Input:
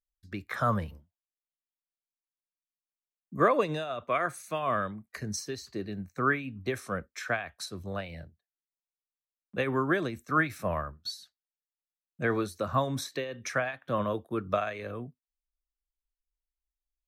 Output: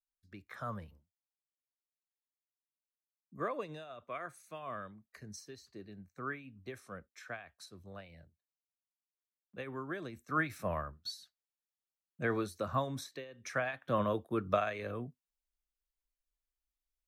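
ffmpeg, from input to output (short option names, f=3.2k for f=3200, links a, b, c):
-af "volume=7.5dB,afade=t=in:st=9.95:d=0.59:silence=0.375837,afade=t=out:st=12.68:d=0.67:silence=0.334965,afade=t=in:st=13.35:d=0.39:silence=0.237137"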